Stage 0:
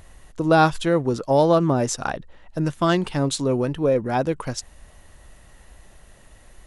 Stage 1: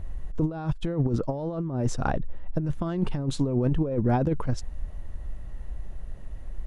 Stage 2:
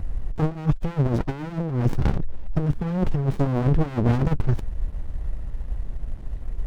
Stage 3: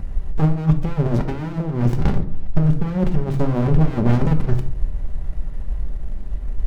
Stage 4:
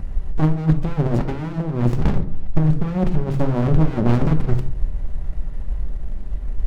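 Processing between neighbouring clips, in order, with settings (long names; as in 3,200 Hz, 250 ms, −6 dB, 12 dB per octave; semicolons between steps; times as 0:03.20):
spectral tilt −3.5 dB per octave; compressor whose output falls as the input rises −17 dBFS, ratio −0.5; level −6.5 dB
windowed peak hold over 65 samples; level +7.5 dB
rectangular room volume 660 cubic metres, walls furnished, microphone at 1.2 metres; level +1.5 dB
highs frequency-modulated by the lows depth 0.7 ms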